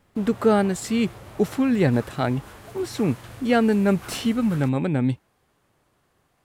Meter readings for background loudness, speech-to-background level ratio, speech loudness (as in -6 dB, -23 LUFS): -42.5 LUFS, 19.5 dB, -23.0 LUFS